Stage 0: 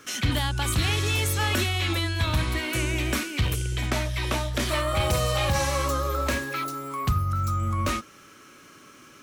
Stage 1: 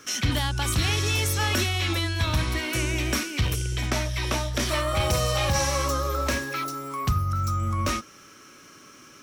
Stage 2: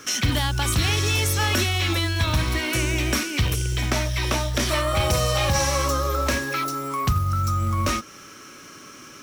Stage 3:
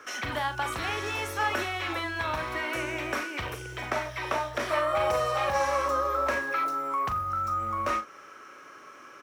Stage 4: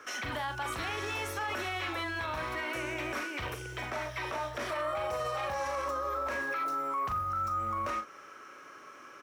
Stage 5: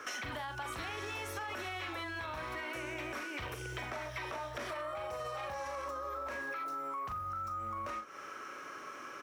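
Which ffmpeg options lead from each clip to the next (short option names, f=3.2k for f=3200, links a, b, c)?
-af "equalizer=f=5.6k:w=5.7:g=8.5"
-filter_complex "[0:a]asplit=2[a][b];[b]acompressor=threshold=-31dB:ratio=6,volume=0dB[c];[a][c]amix=inputs=2:normalize=0,acrusher=bits=6:mode=log:mix=0:aa=0.000001"
-filter_complex "[0:a]acrossover=split=430 2000:gain=0.112 1 0.141[a][b][c];[a][b][c]amix=inputs=3:normalize=0,asplit=2[d][e];[e]adelay=40,volume=-9.5dB[f];[d][f]amix=inputs=2:normalize=0"
-af "alimiter=limit=-24dB:level=0:latency=1:release=40,volume=-2dB"
-af "acompressor=threshold=-42dB:ratio=6,volume=4dB"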